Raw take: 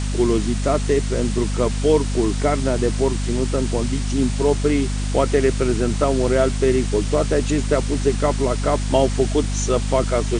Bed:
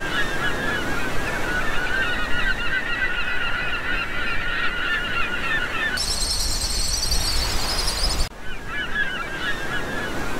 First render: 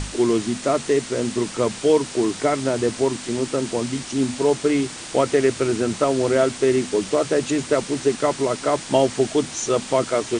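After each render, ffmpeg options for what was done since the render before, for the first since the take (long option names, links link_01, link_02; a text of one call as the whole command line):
ffmpeg -i in.wav -af "bandreject=frequency=50:width_type=h:width=6,bandreject=frequency=100:width_type=h:width=6,bandreject=frequency=150:width_type=h:width=6,bandreject=frequency=200:width_type=h:width=6,bandreject=frequency=250:width_type=h:width=6" out.wav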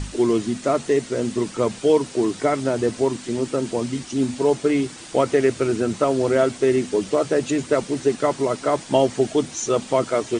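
ffmpeg -i in.wav -af "afftdn=noise_reduction=7:noise_floor=-35" out.wav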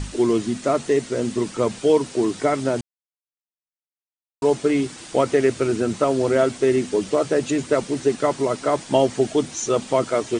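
ffmpeg -i in.wav -filter_complex "[0:a]asplit=3[link_01][link_02][link_03];[link_01]atrim=end=2.81,asetpts=PTS-STARTPTS,afade=type=out:start_time=2.806:duration=0.004:curve=hsin[link_04];[link_02]atrim=start=2.81:end=4.42,asetpts=PTS-STARTPTS,volume=0[link_05];[link_03]atrim=start=4.42,asetpts=PTS-STARTPTS,afade=type=in:duration=0.004:curve=hsin[link_06];[link_04][link_05][link_06]concat=n=3:v=0:a=1" out.wav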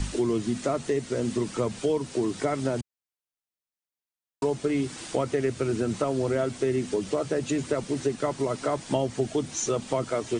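ffmpeg -i in.wav -filter_complex "[0:a]acrossover=split=160[link_01][link_02];[link_02]acompressor=threshold=-26dB:ratio=3[link_03];[link_01][link_03]amix=inputs=2:normalize=0" out.wav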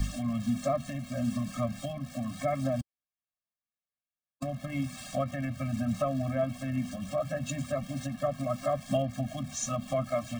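ffmpeg -i in.wav -filter_complex "[0:a]acrossover=split=3400[link_01][link_02];[link_02]aeval=exprs='val(0)*gte(abs(val(0)),0.00668)':channel_layout=same[link_03];[link_01][link_03]amix=inputs=2:normalize=0,afftfilt=real='re*eq(mod(floor(b*sr/1024/260),2),0)':imag='im*eq(mod(floor(b*sr/1024/260),2),0)':win_size=1024:overlap=0.75" out.wav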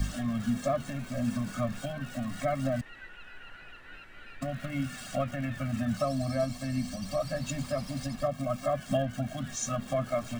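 ffmpeg -i in.wav -i bed.wav -filter_complex "[1:a]volume=-24.5dB[link_01];[0:a][link_01]amix=inputs=2:normalize=0" out.wav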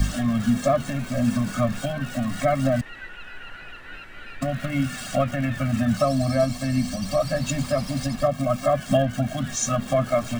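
ffmpeg -i in.wav -af "volume=8.5dB" out.wav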